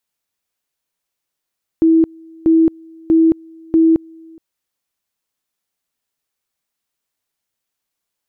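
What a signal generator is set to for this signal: two-level tone 325 Hz -7.5 dBFS, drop 29 dB, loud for 0.22 s, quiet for 0.42 s, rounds 4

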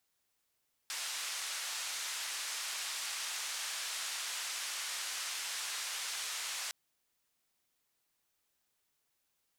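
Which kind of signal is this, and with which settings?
noise band 1.1–7.9 kHz, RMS -39.5 dBFS 5.81 s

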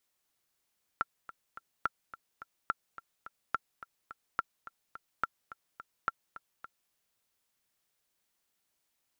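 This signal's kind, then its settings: metronome 213 bpm, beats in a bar 3, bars 7, 1.36 kHz, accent 16 dB -15.5 dBFS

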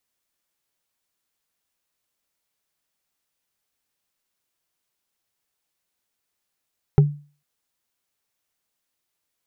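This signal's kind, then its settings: wood hit, lowest mode 146 Hz, decay 0.37 s, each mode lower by 8 dB, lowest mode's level -7 dB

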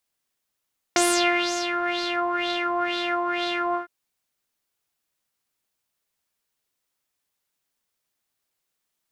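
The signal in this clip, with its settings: synth patch with filter wobble F5, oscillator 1 saw, sub -3.5 dB, noise -8 dB, filter lowpass, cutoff 970 Hz, Q 4.6, filter envelope 2.5 oct, filter decay 1.21 s, filter sustain 40%, attack 1.7 ms, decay 0.60 s, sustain -8.5 dB, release 0.12 s, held 2.79 s, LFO 2.1 Hz, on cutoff 1 oct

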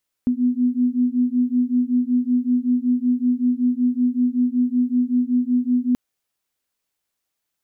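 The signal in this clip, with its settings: beating tones 245 Hz, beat 5.3 Hz, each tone -19.5 dBFS 5.68 s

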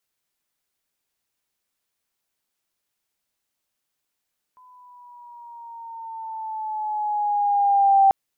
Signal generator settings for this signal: gliding synth tone sine, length 3.54 s, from 1.01 kHz, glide -4.5 st, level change +37 dB, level -11 dB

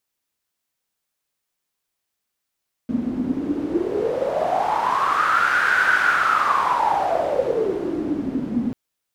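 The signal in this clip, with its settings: wind-like swept noise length 5.84 s, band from 240 Hz, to 1.5 kHz, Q 10, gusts 1, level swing 6 dB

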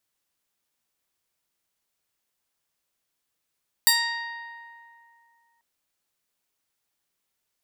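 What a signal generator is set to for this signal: plucked string A#5, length 1.74 s, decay 2.57 s, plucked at 0.3, bright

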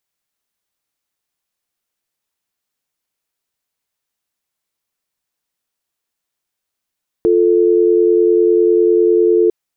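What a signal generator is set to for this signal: call progress tone dial tone, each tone -11.5 dBFS 2.25 s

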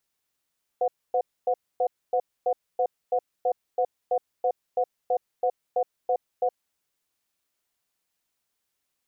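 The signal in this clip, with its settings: cadence 507 Hz, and 728 Hz, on 0.07 s, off 0.26 s, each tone -23 dBFS 5.76 s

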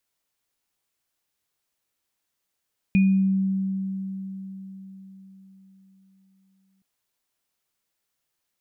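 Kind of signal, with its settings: sine partials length 3.87 s, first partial 192 Hz, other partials 2.46 kHz, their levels -12 dB, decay 4.56 s, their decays 0.47 s, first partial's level -14 dB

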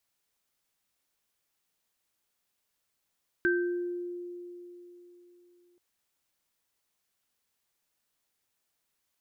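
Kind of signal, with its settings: sine partials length 2.33 s, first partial 352 Hz, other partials 1.56 kHz, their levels 1 dB, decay 3.58 s, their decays 0.65 s, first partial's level -24 dB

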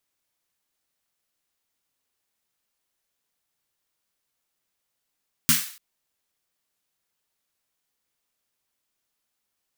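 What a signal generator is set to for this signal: snare drum length 0.29 s, tones 160 Hz, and 240 Hz, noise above 1.3 kHz, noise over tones 6.5 dB, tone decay 0.21 s, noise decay 0.48 s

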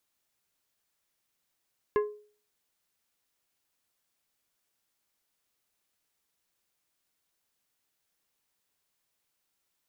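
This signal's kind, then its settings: glass hit plate, lowest mode 419 Hz, decay 0.44 s, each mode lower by 7 dB, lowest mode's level -20 dB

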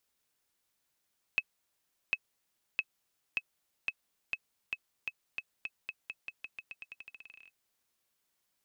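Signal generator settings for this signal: bouncing ball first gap 0.75 s, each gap 0.88, 2.58 kHz, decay 48 ms -16 dBFS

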